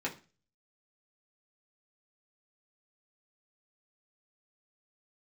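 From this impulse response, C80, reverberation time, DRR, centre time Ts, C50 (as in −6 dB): 20.0 dB, 0.35 s, −4.5 dB, 13 ms, 14.0 dB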